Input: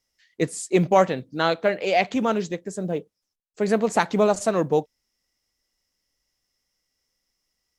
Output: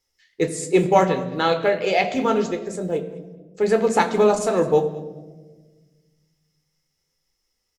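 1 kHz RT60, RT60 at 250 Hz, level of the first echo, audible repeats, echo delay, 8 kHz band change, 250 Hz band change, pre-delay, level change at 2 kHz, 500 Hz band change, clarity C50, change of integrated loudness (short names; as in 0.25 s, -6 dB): 1.0 s, 2.0 s, -19.0 dB, 2, 0.208 s, +1.5 dB, +1.5 dB, 12 ms, +1.5 dB, +3.0 dB, 11.5 dB, +2.5 dB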